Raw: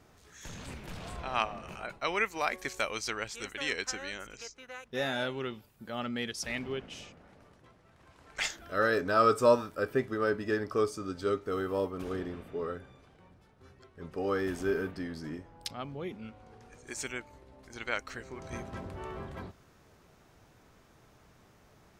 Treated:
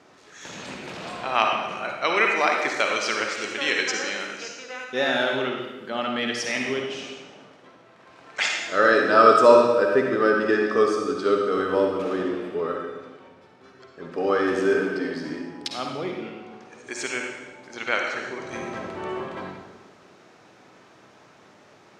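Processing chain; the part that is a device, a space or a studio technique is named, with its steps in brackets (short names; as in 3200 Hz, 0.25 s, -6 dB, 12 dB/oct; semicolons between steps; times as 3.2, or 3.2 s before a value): supermarket ceiling speaker (BPF 250–5900 Hz; reverb RT60 1.2 s, pre-delay 46 ms, DRR 1 dB); gain +8.5 dB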